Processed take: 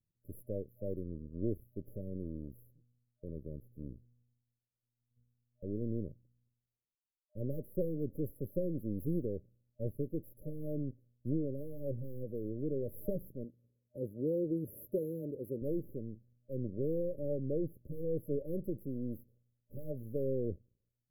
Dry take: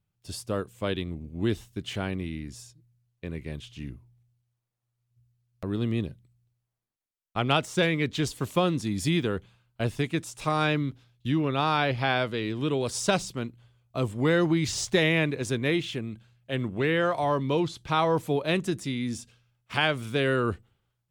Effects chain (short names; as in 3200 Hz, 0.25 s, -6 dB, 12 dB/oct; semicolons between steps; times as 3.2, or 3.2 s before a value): half-wave gain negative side -12 dB; 13.44–15.62 weighting filter D; FFT band-reject 610–11000 Hz; gain -5 dB